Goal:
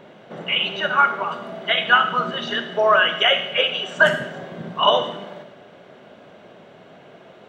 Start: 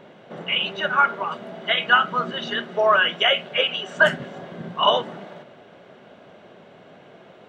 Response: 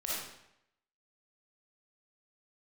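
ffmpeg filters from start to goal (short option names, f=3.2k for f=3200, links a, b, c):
-filter_complex "[0:a]asplit=2[a][b];[1:a]atrim=start_sample=2205,highshelf=f=6k:g=10[c];[b][c]afir=irnorm=-1:irlink=0,volume=-12.5dB[d];[a][d]amix=inputs=2:normalize=0"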